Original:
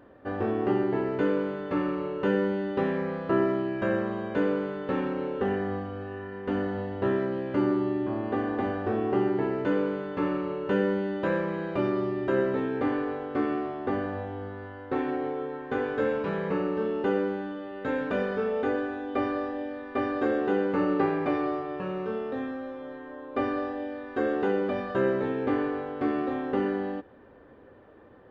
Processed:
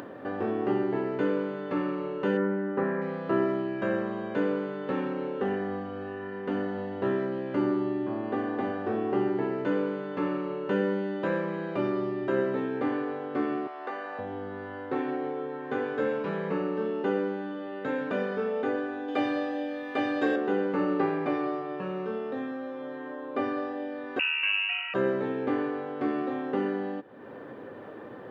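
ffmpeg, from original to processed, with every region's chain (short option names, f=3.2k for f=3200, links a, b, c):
-filter_complex "[0:a]asettb=1/sr,asplit=3[a][b][c];[a]atrim=end=2.374[d];[b]atrim=start=2.37:end=3.02,asetpts=PTS-STARTPTS,afade=t=in:d=0.004:c=qsin,afade=t=out:st=0.646:d=0.004:c=qsin,highshelf=f=2.5k:t=q:w=1.5:g=-14,asplit=2[e][f];[f]adelay=21,volume=-11dB[g];[e][g]amix=inputs=2:normalize=0,atrim=end_sample=28665[h];[c]atrim=start=3.016[i];[d][h]acrossfade=d=0.004:c1=hsin:c2=qsin[j];[j][i]acrossfade=d=0.004:c1=qsin:c2=hsin,asettb=1/sr,asplit=3[k][l][m];[k]atrim=end=13.674[n];[l]atrim=start=13.67:end=14.19,asetpts=PTS-STARTPTS,afade=t=in:d=0.004:c=qsin,afade=t=out:st=0.516:d=0.004:c=qsin,highpass=720,bandreject=f=3.3k:w=15[o];[m]atrim=start=14.186[p];[n][o]acrossfade=d=0.004:c1=hsin:c2=qsin[q];[q][p]acrossfade=d=0.004:c1=qsin:c2=hsin,asettb=1/sr,asplit=3[r][s][t];[r]atrim=end=19.084[u];[s]atrim=start=19.08:end=20.36,asetpts=PTS-STARTPTS,afade=t=in:d=0.004:c=qsin,afade=t=out:st=1.276:d=0.004:c=qsin,highshelf=f=2.8k:g=11.5,aecho=1:1:6.4:0.58,atrim=end_sample=56448[v];[t]atrim=start=20.356[w];[u][v]acrossfade=d=0.004:c1=hsin:c2=qsin[x];[x][w]acrossfade=d=0.004:c1=qsin:c2=hsin,asettb=1/sr,asplit=3[y][z][aa];[y]atrim=end=24.194[ab];[z]atrim=start=24.19:end=24.94,asetpts=PTS-STARTPTS,afade=t=in:d=0.004:c=qsin,afade=t=out:st=0.746:d=0.004:c=qsin,lowpass=f=2.6k:t=q:w=0.5098,lowpass=f=2.6k:t=q:w=0.6013,lowpass=f=2.6k:t=q:w=0.9,lowpass=f=2.6k:t=q:w=2.563,afreqshift=-3100,aeval=exprs='val(0)+0.00355*sin(2*PI*940*n/s)':c=same[ac];[aa]atrim=start=24.936[ad];[ab][ac]acrossfade=d=0.004:c1=hsin:c2=qsin[ae];[ae][ad]acrossfade=d=0.004:c1=qsin:c2=hsin,highpass=f=120:w=0.5412,highpass=f=120:w=1.3066,acompressor=mode=upward:threshold=-29dB:ratio=2.5,volume=-1.5dB"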